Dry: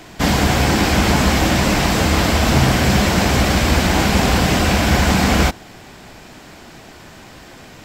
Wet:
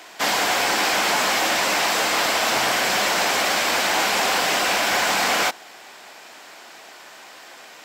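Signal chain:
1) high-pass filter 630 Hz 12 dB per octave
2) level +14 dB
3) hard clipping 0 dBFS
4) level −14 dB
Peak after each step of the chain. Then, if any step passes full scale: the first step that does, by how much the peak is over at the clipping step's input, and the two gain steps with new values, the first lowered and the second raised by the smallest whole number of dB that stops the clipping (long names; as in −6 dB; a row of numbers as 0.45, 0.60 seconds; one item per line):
−6.5, +7.5, 0.0, −14.0 dBFS
step 2, 7.5 dB
step 2 +6 dB, step 4 −6 dB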